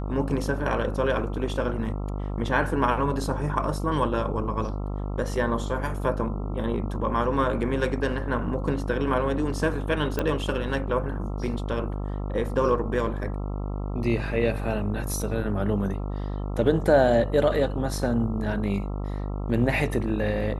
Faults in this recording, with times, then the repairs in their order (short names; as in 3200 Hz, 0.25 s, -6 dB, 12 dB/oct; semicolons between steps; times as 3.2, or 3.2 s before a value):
buzz 50 Hz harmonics 27 -30 dBFS
10.19 pop -13 dBFS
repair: de-click; de-hum 50 Hz, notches 27